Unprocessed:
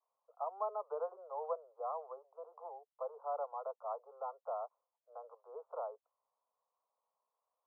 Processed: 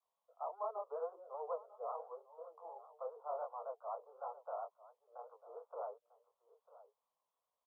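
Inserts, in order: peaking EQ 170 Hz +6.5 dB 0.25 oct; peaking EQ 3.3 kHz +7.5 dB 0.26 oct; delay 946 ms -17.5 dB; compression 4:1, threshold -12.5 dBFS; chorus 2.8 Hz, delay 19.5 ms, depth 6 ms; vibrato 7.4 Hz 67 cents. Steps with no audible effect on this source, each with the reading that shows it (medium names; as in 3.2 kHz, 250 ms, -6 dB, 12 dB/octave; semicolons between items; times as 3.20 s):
peaking EQ 170 Hz: input has nothing below 380 Hz; peaking EQ 3.3 kHz: input has nothing above 1.4 kHz; compression, threshold -12.5 dBFS: peak at its input -25.5 dBFS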